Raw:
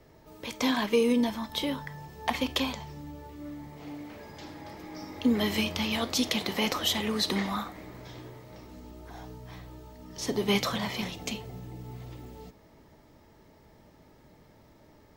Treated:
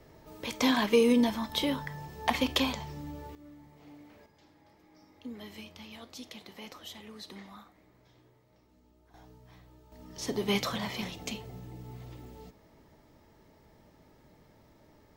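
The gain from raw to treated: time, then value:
+1 dB
from 3.35 s -11 dB
from 4.26 s -18 dB
from 9.14 s -11 dB
from 9.92 s -3 dB

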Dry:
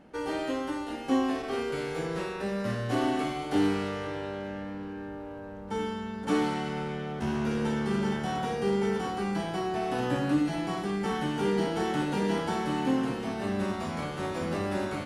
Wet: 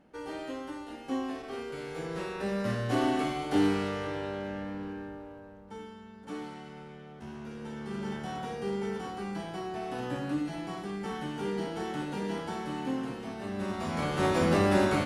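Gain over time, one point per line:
1.76 s -7 dB
2.52 s 0 dB
4.9 s 0 dB
5.87 s -13 dB
7.58 s -13 dB
8.14 s -6 dB
13.51 s -6 dB
14.26 s +6.5 dB

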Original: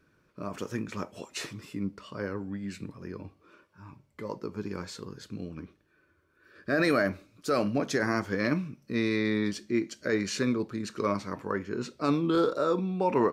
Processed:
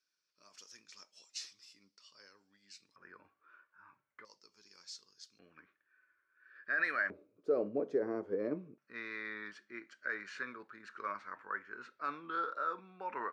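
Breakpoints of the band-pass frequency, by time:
band-pass, Q 3.4
5200 Hz
from 2.96 s 1500 Hz
from 4.25 s 5400 Hz
from 5.39 s 1700 Hz
from 7.1 s 440 Hz
from 8.78 s 1500 Hz

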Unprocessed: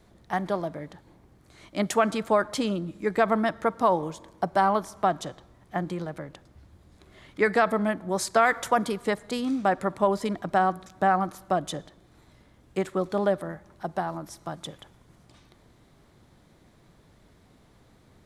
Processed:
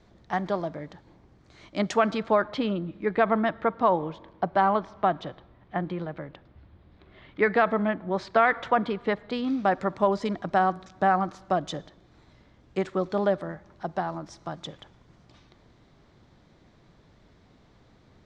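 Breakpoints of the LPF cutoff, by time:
LPF 24 dB/oct
1.82 s 6300 Hz
2.6 s 3700 Hz
9.24 s 3700 Hz
9.77 s 6100 Hz

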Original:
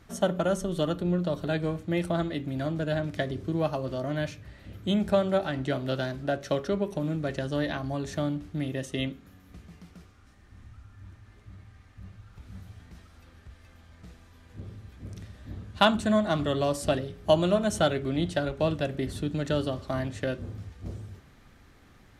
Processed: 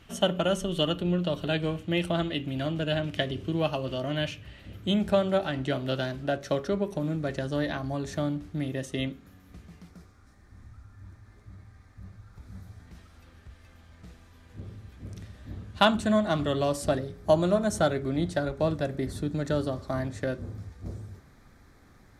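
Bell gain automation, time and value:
bell 2900 Hz 0.4 oct
+13.5 dB
from 4.61 s +4.5 dB
from 6.38 s -2 dB
from 9.88 s -12 dB
from 12.87 s -0.5 dB
from 16.86 s -11 dB

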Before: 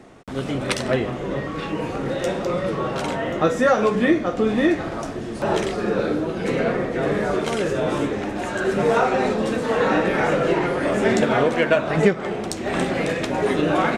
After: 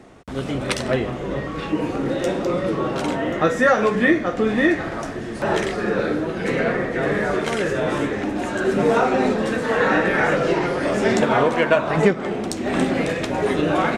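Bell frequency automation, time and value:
bell +6.5 dB 0.57 oct
61 Hz
from 1.72 s 300 Hz
from 3.33 s 1800 Hz
from 8.23 s 270 Hz
from 9.36 s 1700 Hz
from 10.37 s 5200 Hz
from 11.17 s 1000 Hz
from 12.1 s 260 Hz
from 13.04 s 71 Hz

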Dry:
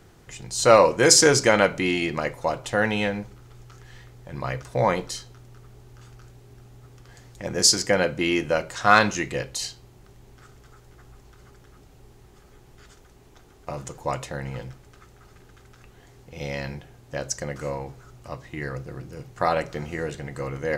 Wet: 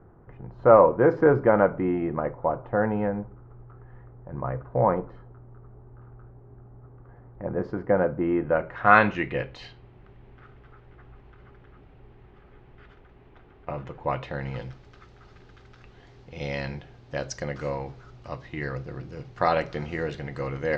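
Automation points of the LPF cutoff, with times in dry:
LPF 24 dB/oct
8.29 s 1300 Hz
9.08 s 2800 Hz
14.07 s 2800 Hz
14.54 s 4900 Hz

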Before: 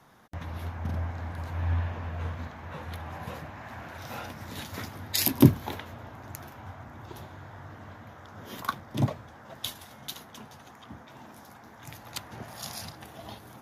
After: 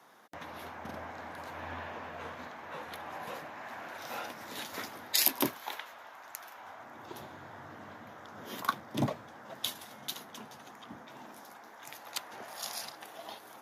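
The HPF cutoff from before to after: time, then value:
4.97 s 330 Hz
5.6 s 830 Hz
6.44 s 830 Hz
7.21 s 200 Hz
11.13 s 200 Hz
11.75 s 430 Hz

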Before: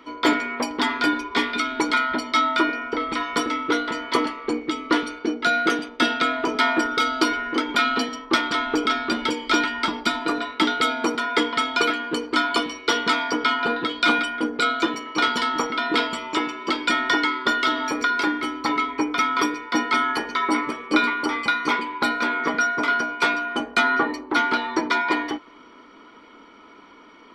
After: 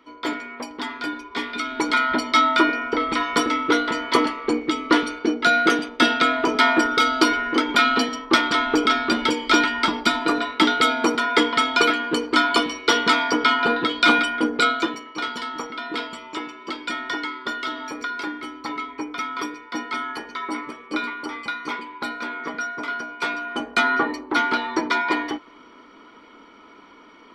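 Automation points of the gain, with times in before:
1.24 s -7.5 dB
2.13 s +3 dB
14.63 s +3 dB
15.14 s -7 dB
23.05 s -7 dB
23.77 s 0 dB

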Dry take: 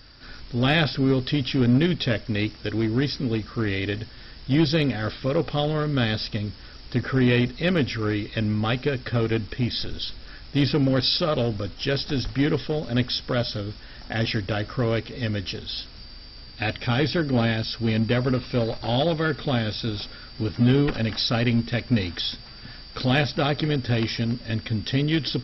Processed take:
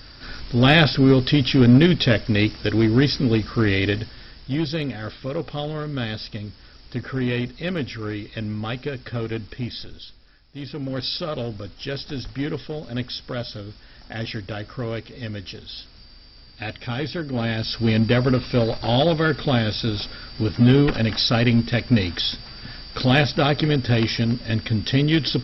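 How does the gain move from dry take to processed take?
3.87 s +6 dB
4.58 s -4 dB
9.66 s -4 dB
10.46 s -16 dB
11.03 s -4.5 dB
17.32 s -4.5 dB
17.75 s +4 dB

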